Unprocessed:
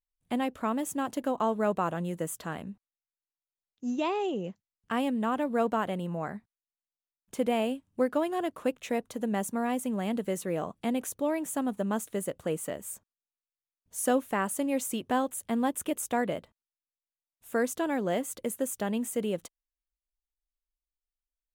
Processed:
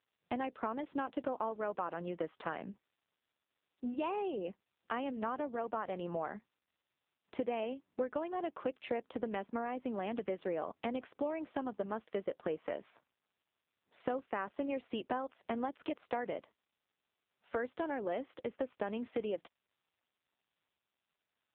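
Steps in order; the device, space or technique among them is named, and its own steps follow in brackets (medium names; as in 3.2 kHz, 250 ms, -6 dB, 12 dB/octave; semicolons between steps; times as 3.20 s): voicemail (band-pass 320–3100 Hz; compression 6:1, threshold -37 dBFS, peak gain reduction 14.5 dB; trim +4.5 dB; AMR-NB 5.9 kbps 8 kHz)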